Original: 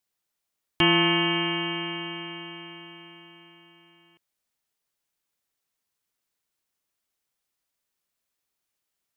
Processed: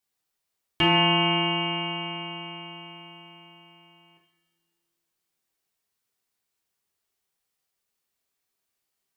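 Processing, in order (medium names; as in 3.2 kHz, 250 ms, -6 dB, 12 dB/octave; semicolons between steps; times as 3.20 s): two-slope reverb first 0.64 s, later 2.5 s, from -18 dB, DRR -1.5 dB; trim -2.5 dB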